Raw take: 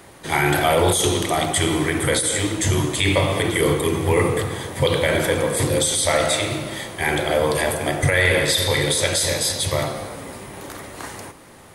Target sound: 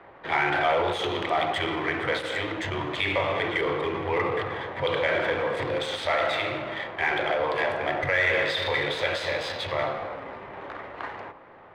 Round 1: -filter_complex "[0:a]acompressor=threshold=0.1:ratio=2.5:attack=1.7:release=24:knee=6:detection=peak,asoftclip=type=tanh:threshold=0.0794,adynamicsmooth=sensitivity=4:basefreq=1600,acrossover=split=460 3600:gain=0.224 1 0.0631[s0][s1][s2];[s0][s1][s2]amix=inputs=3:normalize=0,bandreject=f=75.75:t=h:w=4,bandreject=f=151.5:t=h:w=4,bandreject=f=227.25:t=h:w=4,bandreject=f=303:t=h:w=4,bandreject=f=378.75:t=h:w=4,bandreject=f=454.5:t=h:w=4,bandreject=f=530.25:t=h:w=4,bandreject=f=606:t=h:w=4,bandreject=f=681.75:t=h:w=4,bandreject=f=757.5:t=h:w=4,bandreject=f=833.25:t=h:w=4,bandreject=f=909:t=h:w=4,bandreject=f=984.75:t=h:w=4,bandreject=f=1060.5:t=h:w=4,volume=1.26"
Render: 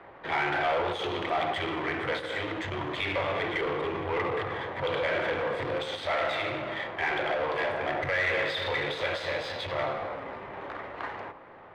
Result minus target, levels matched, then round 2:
saturation: distortion +15 dB
-filter_complex "[0:a]acompressor=threshold=0.1:ratio=2.5:attack=1.7:release=24:knee=6:detection=peak,asoftclip=type=tanh:threshold=0.282,adynamicsmooth=sensitivity=4:basefreq=1600,acrossover=split=460 3600:gain=0.224 1 0.0631[s0][s1][s2];[s0][s1][s2]amix=inputs=3:normalize=0,bandreject=f=75.75:t=h:w=4,bandreject=f=151.5:t=h:w=4,bandreject=f=227.25:t=h:w=4,bandreject=f=303:t=h:w=4,bandreject=f=378.75:t=h:w=4,bandreject=f=454.5:t=h:w=4,bandreject=f=530.25:t=h:w=4,bandreject=f=606:t=h:w=4,bandreject=f=681.75:t=h:w=4,bandreject=f=757.5:t=h:w=4,bandreject=f=833.25:t=h:w=4,bandreject=f=909:t=h:w=4,bandreject=f=984.75:t=h:w=4,bandreject=f=1060.5:t=h:w=4,volume=1.26"

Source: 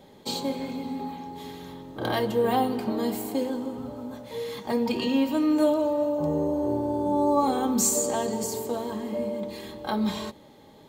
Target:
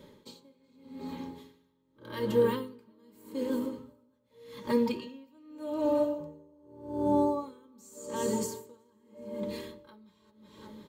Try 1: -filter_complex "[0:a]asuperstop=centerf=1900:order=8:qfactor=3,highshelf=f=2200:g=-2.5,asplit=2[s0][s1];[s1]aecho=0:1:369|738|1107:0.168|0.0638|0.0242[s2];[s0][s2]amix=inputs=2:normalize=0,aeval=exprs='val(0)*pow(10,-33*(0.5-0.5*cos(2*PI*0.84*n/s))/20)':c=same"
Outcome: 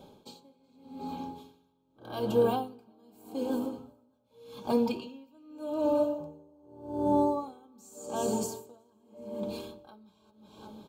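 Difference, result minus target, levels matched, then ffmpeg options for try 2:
2 kHz band -4.5 dB
-filter_complex "[0:a]asuperstop=centerf=730:order=8:qfactor=3,highshelf=f=2200:g=-2.5,asplit=2[s0][s1];[s1]aecho=0:1:369|738|1107:0.168|0.0638|0.0242[s2];[s0][s2]amix=inputs=2:normalize=0,aeval=exprs='val(0)*pow(10,-33*(0.5-0.5*cos(2*PI*0.84*n/s))/20)':c=same"

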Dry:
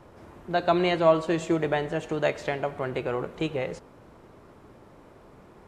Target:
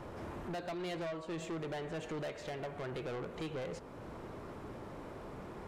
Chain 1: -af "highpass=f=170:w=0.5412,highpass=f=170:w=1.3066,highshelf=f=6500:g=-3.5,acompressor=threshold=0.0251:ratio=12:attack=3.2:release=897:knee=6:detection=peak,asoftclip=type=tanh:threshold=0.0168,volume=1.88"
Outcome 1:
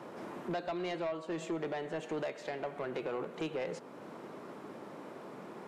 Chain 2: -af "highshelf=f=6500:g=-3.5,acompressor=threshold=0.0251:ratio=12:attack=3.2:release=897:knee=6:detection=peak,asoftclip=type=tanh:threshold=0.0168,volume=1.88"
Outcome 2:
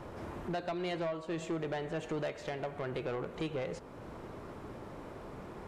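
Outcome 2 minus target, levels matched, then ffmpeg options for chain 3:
saturation: distortion -6 dB
-af "highshelf=f=6500:g=-3.5,acompressor=threshold=0.0251:ratio=12:attack=3.2:release=897:knee=6:detection=peak,asoftclip=type=tanh:threshold=0.00794,volume=1.88"

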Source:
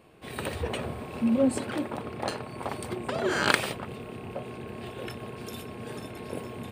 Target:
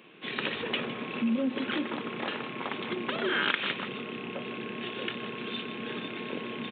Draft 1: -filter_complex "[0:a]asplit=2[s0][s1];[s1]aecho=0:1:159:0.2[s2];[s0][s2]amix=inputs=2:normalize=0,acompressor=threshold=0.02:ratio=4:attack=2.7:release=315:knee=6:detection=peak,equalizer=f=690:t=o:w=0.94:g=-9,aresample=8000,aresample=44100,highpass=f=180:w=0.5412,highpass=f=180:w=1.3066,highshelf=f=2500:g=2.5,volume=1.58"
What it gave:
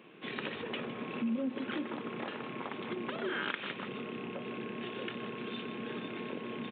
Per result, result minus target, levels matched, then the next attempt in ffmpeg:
compression: peak gain reduction +5 dB; 4 kHz band -3.5 dB
-filter_complex "[0:a]asplit=2[s0][s1];[s1]aecho=0:1:159:0.2[s2];[s0][s2]amix=inputs=2:normalize=0,acompressor=threshold=0.0447:ratio=4:attack=2.7:release=315:knee=6:detection=peak,equalizer=f=690:t=o:w=0.94:g=-9,aresample=8000,aresample=44100,highpass=f=180:w=0.5412,highpass=f=180:w=1.3066,highshelf=f=2500:g=2.5,volume=1.58"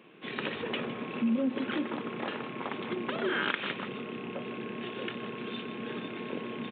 4 kHz band -3.5 dB
-filter_complex "[0:a]asplit=2[s0][s1];[s1]aecho=0:1:159:0.2[s2];[s0][s2]amix=inputs=2:normalize=0,acompressor=threshold=0.0447:ratio=4:attack=2.7:release=315:knee=6:detection=peak,equalizer=f=690:t=o:w=0.94:g=-9,aresample=8000,aresample=44100,highpass=f=180:w=0.5412,highpass=f=180:w=1.3066,highshelf=f=2500:g=11.5,volume=1.58"

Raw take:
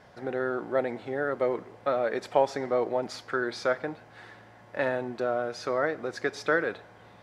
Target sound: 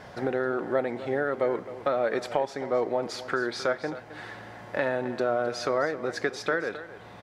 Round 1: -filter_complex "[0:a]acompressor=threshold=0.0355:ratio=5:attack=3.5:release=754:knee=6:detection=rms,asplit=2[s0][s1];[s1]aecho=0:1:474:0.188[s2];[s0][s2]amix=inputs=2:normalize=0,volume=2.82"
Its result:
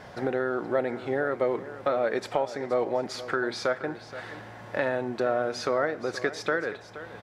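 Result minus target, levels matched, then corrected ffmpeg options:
echo 210 ms late
-filter_complex "[0:a]acompressor=threshold=0.0355:ratio=5:attack=3.5:release=754:knee=6:detection=rms,asplit=2[s0][s1];[s1]aecho=0:1:264:0.188[s2];[s0][s2]amix=inputs=2:normalize=0,volume=2.82"

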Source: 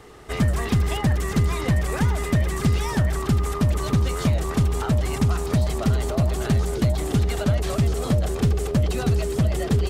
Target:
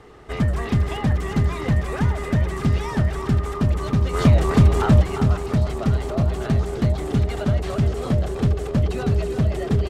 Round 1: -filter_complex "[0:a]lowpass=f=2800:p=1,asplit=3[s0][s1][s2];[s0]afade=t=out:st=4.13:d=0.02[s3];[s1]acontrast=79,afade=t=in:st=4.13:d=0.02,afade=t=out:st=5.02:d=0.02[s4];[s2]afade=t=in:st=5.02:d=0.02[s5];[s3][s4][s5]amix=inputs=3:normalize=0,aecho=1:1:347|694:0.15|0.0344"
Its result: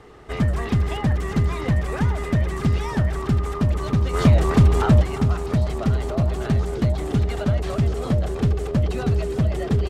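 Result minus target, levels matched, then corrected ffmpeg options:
echo-to-direct -7.5 dB
-filter_complex "[0:a]lowpass=f=2800:p=1,asplit=3[s0][s1][s2];[s0]afade=t=out:st=4.13:d=0.02[s3];[s1]acontrast=79,afade=t=in:st=4.13:d=0.02,afade=t=out:st=5.02:d=0.02[s4];[s2]afade=t=in:st=5.02:d=0.02[s5];[s3][s4][s5]amix=inputs=3:normalize=0,aecho=1:1:347|694|1041:0.355|0.0816|0.0188"

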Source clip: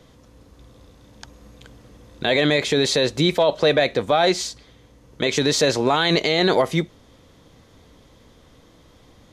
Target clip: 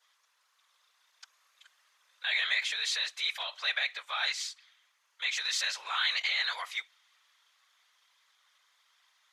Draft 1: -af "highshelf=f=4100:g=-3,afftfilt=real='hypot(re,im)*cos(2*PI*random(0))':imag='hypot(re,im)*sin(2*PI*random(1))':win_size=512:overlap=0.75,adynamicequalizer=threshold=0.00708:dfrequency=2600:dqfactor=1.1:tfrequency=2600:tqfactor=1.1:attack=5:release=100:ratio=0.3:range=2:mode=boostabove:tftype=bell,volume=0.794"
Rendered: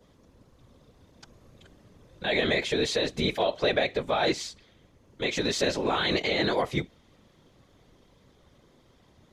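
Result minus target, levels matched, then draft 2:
1 kHz band +5.0 dB
-af "highshelf=f=4100:g=-3,afftfilt=real='hypot(re,im)*cos(2*PI*random(0))':imag='hypot(re,im)*sin(2*PI*random(1))':win_size=512:overlap=0.75,adynamicequalizer=threshold=0.00708:dfrequency=2600:dqfactor=1.1:tfrequency=2600:tqfactor=1.1:attack=5:release=100:ratio=0.3:range=2:mode=boostabove:tftype=bell,highpass=f=1200:w=0.5412,highpass=f=1200:w=1.3066,volume=0.794"

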